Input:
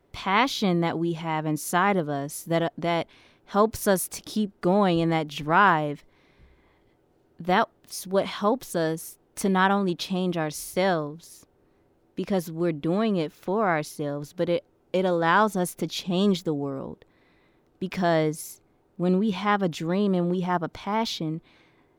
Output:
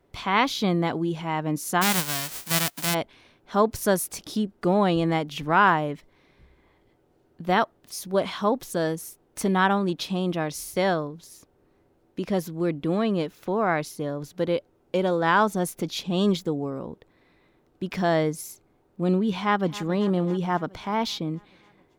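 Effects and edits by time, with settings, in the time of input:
1.81–2.93 s: formants flattened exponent 0.1
19.38–19.87 s: echo throw 270 ms, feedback 70%, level -17.5 dB

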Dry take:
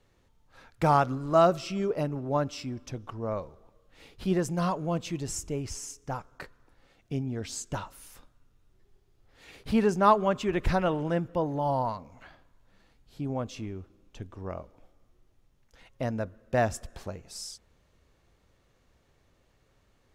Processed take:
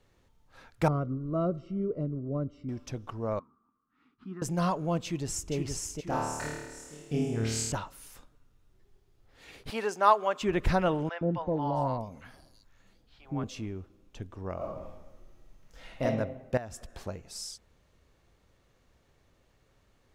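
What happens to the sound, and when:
0.88–2.69 s: boxcar filter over 52 samples
3.39–4.42 s: two resonant band-passes 560 Hz, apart 2.3 oct
5.04–5.53 s: echo throw 470 ms, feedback 45%, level -4 dB
6.04–7.72 s: flutter echo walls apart 4.6 m, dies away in 1.2 s
9.70–10.42 s: high-pass 550 Hz
11.09–13.44 s: three bands offset in time mids, lows, highs 120/660 ms, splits 720/4800 Hz
14.56–16.03 s: reverb throw, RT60 0.95 s, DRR -7 dB
16.57–16.97 s: compression 5:1, threshold -39 dBFS

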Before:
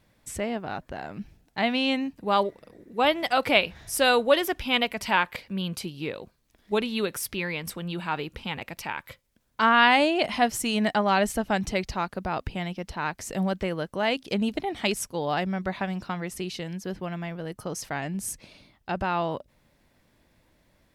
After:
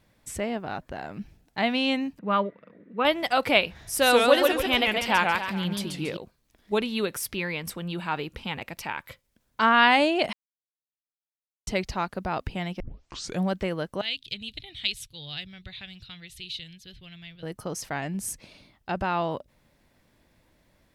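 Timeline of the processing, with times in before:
2.19–3.05 s: cabinet simulation 170–2800 Hz, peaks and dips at 190 Hz +6 dB, 360 Hz -8 dB, 790 Hz -9 dB, 1.3 kHz +4 dB
3.83–6.17 s: modulated delay 139 ms, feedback 41%, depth 205 cents, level -3 dB
10.33–11.67 s: mute
12.80 s: tape start 0.62 s
14.01–17.43 s: FFT filter 130 Hz 0 dB, 190 Hz -18 dB, 980 Hz -26 dB, 3.8 kHz +8 dB, 5.4 kHz -9 dB

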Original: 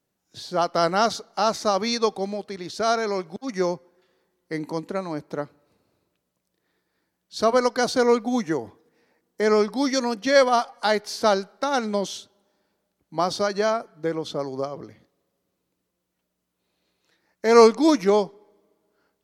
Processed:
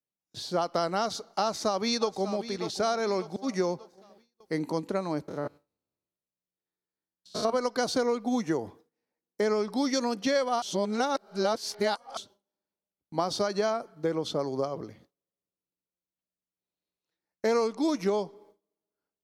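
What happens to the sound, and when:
1.42–2.43 s: echo throw 590 ms, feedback 45%, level -15.5 dB
5.28–7.50 s: spectrogram pixelated in time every 100 ms
10.62–12.17 s: reverse
whole clip: gate with hold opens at -47 dBFS; peaking EQ 1.8 kHz -3.5 dB 0.73 oct; compression 10:1, threshold -23 dBFS

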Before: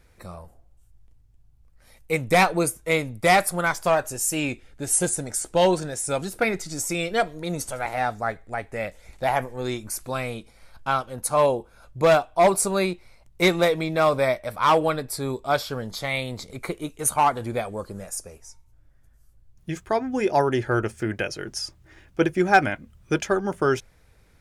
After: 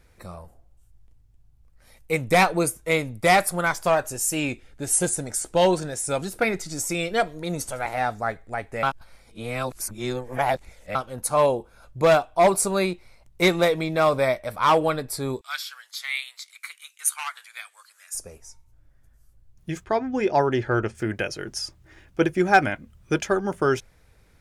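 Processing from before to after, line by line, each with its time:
8.83–10.95 s: reverse
15.41–18.15 s: inverse Chebyshev high-pass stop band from 250 Hz, stop band 80 dB
19.84–20.95 s: low-pass 5.6 kHz

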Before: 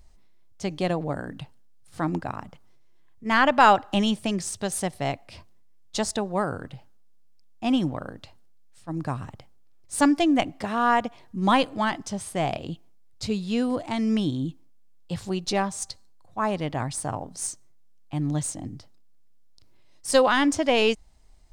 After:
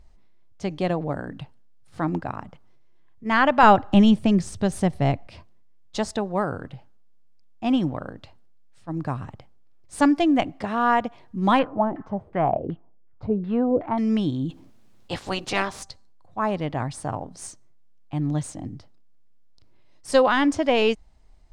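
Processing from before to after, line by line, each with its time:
3.63–5.27 s: bass shelf 270 Hz +11.5 dB
11.59–13.98 s: LFO low-pass saw down 2.7 Hz 390–1900 Hz
14.49–15.81 s: spectral peaks clipped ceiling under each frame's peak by 21 dB
whole clip: low-pass 2.8 kHz 6 dB/octave; trim +1.5 dB

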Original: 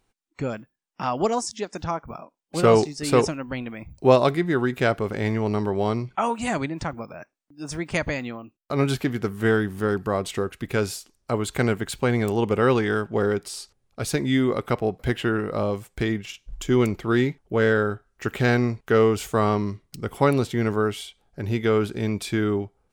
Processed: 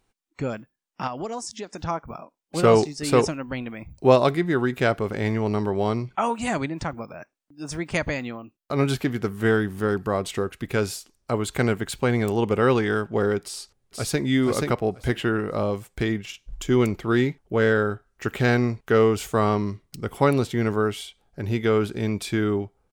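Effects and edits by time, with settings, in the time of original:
1.07–1.78 s: compression 2.5:1, threshold -31 dBFS
13.43–14.23 s: echo throw 480 ms, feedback 15%, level -3 dB

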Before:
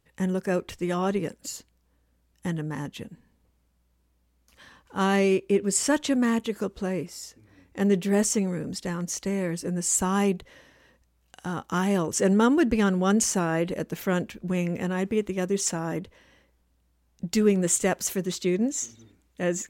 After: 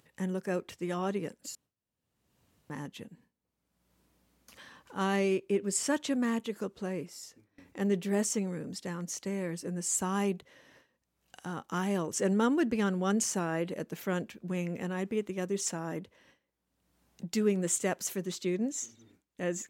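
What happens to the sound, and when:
1.55–2.70 s: room tone
whole clip: high-pass 120 Hz 12 dB/octave; gate with hold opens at -46 dBFS; upward compressor, threshold -38 dBFS; trim -6.5 dB

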